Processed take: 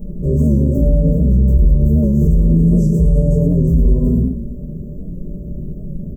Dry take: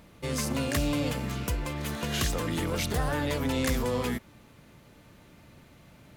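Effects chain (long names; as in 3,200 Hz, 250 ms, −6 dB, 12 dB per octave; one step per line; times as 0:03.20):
0:02.65–0:03.34: flat-topped bell 6,400 Hz +12.5 dB
downward compressor 3 to 1, threshold −37 dBFS, peak gain reduction 13 dB
phaser with its sweep stopped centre 3,000 Hz, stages 6
upward compression, threshold −59 dBFS
tilt shelving filter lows +9 dB
comb filter 5 ms, depth 72%
repeating echo 108 ms, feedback 36%, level −8.5 dB
rectangular room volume 55 cubic metres, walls mixed, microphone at 1.4 metres
soft clipping −2.5 dBFS, distortion −33 dB
elliptic band-stop filter 690–8,200 Hz, stop band 50 dB
boost into a limiter +13 dB
wow of a warped record 78 rpm, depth 100 cents
level −4 dB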